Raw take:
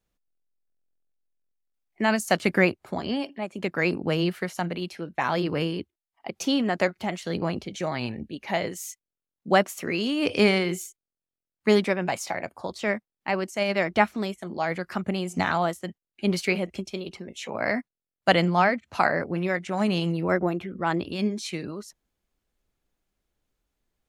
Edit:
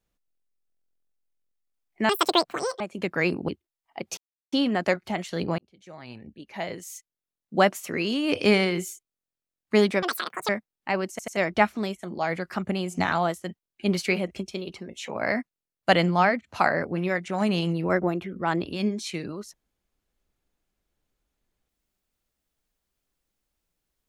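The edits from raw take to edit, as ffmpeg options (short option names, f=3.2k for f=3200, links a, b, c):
-filter_complex "[0:a]asplit=11[a][b][c][d][e][f][g][h][i][j][k];[a]atrim=end=2.094[l];[b]atrim=start=2.09:end=3.41,asetpts=PTS-STARTPTS,asetrate=81585,aresample=44100[m];[c]atrim=start=3.406:end=4.092[n];[d]atrim=start=5.768:end=6.46,asetpts=PTS-STARTPTS,afade=t=out:st=0.688:d=0.004:c=hsin,apad=pad_dur=0.35[o];[e]atrim=start=6.46:end=7.52,asetpts=PTS-STARTPTS,afade=t=in:d=0.004:c=hsin,afade=t=out:st=1.056:d=0.004:c=hsin[p];[f]atrim=start=7.52:end=11.964,asetpts=PTS-STARTPTS,afade=t=in:d=2.02[q];[g]atrim=start=11.96:end=12.88,asetpts=PTS-STARTPTS,asetrate=87318,aresample=44100[r];[h]atrim=start=12.876:end=13.582[s];[i]atrim=start=13.488:end=13.582[t];[j]atrim=start=13.488:end=13.582[u];[k]atrim=start=13.758[v];[l][m]acrossfade=d=0.004:c1=hsin:c2=hsin[w];[w][n]acrossfade=d=0.004:c1=hsin:c2=hsin[x];[o][p][q]concat=n=3:v=0:a=1[y];[x][y]acrossfade=d=0.004:c1=hsin:c2=hsin[z];[z][r]acrossfade=d=0.004:c1=hsin:c2=hsin[aa];[aa][s]acrossfade=d=0.004:c1=hsin:c2=hsin[ab];[ab][t]acrossfade=d=0.004:c1=hsin:c2=hsin[ac];[ac][u]acrossfade=d=0.004:c1=hsin:c2=hsin[ad];[ad][v]acrossfade=d=0.004:c1=hsin:c2=hsin"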